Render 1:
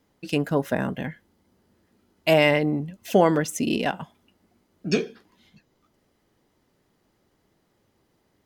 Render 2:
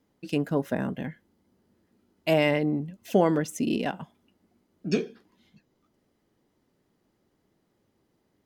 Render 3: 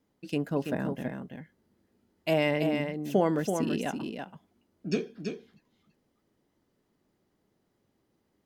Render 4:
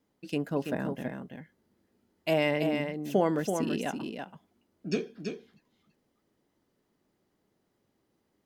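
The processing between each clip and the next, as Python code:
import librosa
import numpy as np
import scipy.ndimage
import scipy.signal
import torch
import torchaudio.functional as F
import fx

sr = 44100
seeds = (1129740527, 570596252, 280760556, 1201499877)

y1 = fx.peak_eq(x, sr, hz=250.0, db=5.0, octaves=2.1)
y1 = y1 * 10.0 ** (-6.5 / 20.0)
y2 = y1 + 10.0 ** (-6.0 / 20.0) * np.pad(y1, (int(331 * sr / 1000.0), 0))[:len(y1)]
y2 = y2 * 10.0 ** (-3.5 / 20.0)
y3 = fx.low_shelf(y2, sr, hz=190.0, db=-3.5)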